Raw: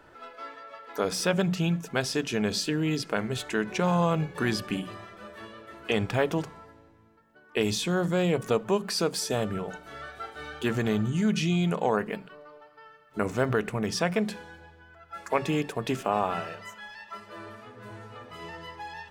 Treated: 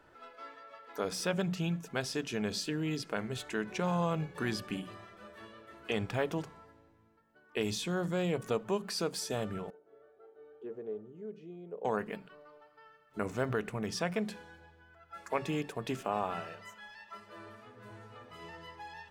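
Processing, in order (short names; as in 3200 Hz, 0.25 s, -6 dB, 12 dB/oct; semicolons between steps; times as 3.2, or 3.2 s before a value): 9.7–11.85 band-pass 440 Hz, Q 4.6; gain -7 dB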